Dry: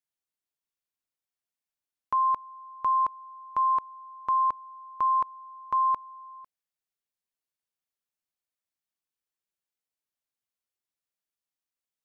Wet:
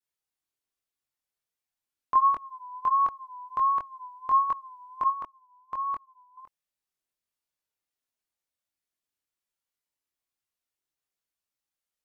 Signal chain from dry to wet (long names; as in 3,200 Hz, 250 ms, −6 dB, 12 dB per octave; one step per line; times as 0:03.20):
0:05.07–0:06.37: output level in coarse steps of 15 dB
pitch vibrato 1.4 Hz 94 cents
multi-voice chorus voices 4, 0.17 Hz, delay 23 ms, depth 2 ms
level +4.5 dB